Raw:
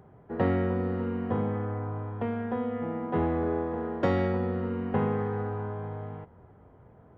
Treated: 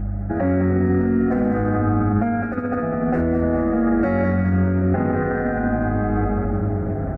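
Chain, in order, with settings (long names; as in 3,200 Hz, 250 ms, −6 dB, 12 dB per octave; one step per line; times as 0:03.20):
0:00.85–0:03.21: hard clipping −23.5 dBFS, distortion −23 dB
high-shelf EQ 3,400 Hz −9.5 dB
repeating echo 205 ms, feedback 33%, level −6.5 dB
automatic gain control gain up to 10.5 dB
low-shelf EQ 380 Hz +3 dB
phaser with its sweep stopped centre 660 Hz, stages 8
hum removal 148.5 Hz, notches 5
mains hum 50 Hz, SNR 19 dB
delay with a low-pass on its return 778 ms, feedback 35%, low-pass 540 Hz, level −15 dB
boost into a limiter +30 dB
barber-pole flanger 6.7 ms −0.47 Hz
level −9 dB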